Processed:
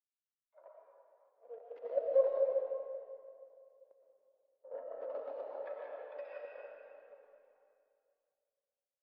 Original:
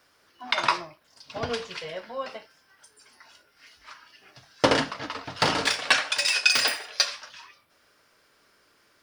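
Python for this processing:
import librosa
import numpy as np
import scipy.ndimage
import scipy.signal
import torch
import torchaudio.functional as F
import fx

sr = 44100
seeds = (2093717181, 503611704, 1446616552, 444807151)

p1 = fx.delta_hold(x, sr, step_db=-27.5)
p2 = fx.rider(p1, sr, range_db=4, speed_s=2.0)
p3 = p1 + F.gain(torch.from_numpy(p2), -1.0).numpy()
p4 = fx.env_lowpass_down(p3, sr, base_hz=1700.0, full_db=-15.5)
p5 = scipy.signal.sosfilt(scipy.signal.butter(2, 6100.0, 'lowpass', fs=sr, output='sos'), p4)
p6 = fx.auto_swell(p5, sr, attack_ms=612.0)
p7 = fx.ladder_highpass(p6, sr, hz=490.0, resonance_pct=65)
p8 = fx.tremolo_shape(p7, sr, shape='saw_down', hz=7.6, depth_pct=60)
p9 = fx.tilt_eq(p8, sr, slope=-2.5)
p10 = fx.rev_freeverb(p9, sr, rt60_s=3.7, hf_ratio=0.75, predelay_ms=70, drr_db=-3.5)
y = fx.spectral_expand(p10, sr, expansion=1.5)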